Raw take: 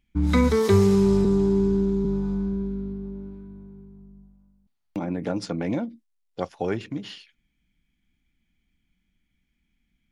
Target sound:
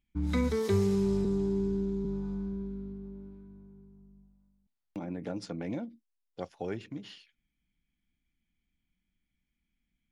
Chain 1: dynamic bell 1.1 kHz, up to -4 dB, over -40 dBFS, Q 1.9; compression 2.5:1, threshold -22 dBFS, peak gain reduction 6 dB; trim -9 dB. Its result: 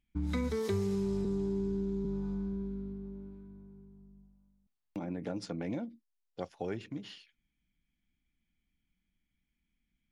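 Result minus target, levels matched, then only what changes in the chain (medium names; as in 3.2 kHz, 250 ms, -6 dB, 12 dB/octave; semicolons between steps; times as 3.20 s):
compression: peak gain reduction +6 dB
remove: compression 2.5:1, threshold -22 dBFS, peak gain reduction 6 dB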